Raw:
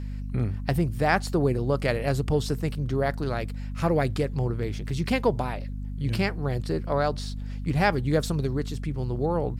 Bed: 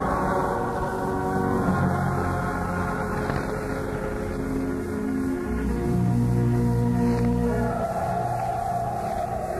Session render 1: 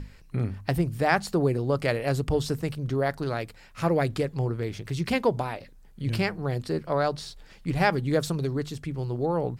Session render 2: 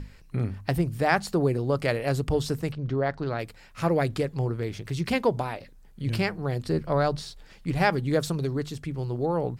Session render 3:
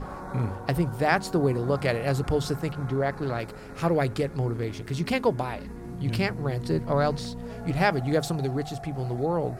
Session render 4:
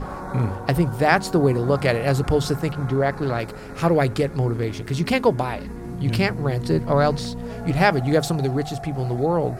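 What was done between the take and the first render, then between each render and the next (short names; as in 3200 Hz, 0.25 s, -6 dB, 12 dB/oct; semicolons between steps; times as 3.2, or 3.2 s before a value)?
notches 50/100/150/200/250 Hz
2.72–3.39 air absorption 140 m; 6.65–7.22 low shelf 140 Hz +10.5 dB
add bed -14 dB
gain +5.5 dB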